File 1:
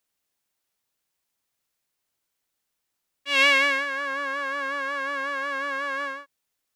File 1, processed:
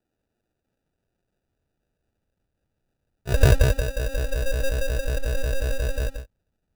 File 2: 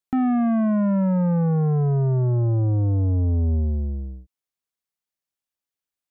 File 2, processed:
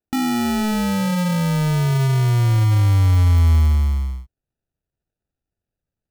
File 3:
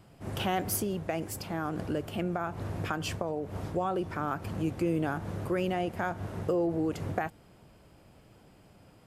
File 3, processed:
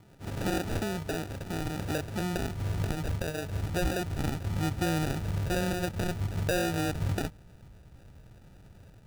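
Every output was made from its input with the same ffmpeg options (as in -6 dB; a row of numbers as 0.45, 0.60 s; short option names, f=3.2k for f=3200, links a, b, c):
-af "acrusher=samples=41:mix=1:aa=0.000001,asubboost=boost=3:cutoff=150"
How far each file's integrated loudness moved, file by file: -1.0, +3.5, +1.0 LU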